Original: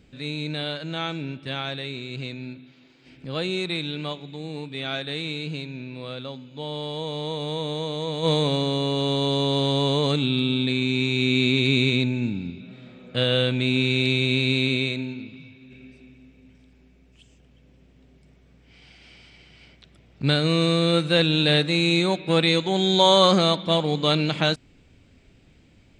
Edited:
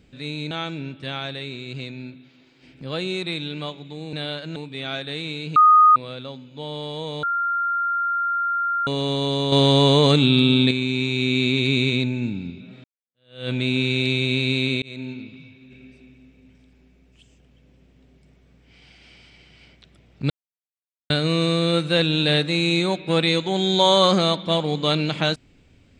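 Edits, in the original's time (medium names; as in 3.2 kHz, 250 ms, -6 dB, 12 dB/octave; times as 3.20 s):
0.51–0.94 s: move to 4.56 s
5.56–5.96 s: bleep 1.24 kHz -9 dBFS
7.23–8.87 s: bleep 1.39 kHz -20 dBFS
9.52–10.71 s: gain +6.5 dB
12.84–13.50 s: fade in exponential
14.82–15.09 s: fade in
20.30 s: insert silence 0.80 s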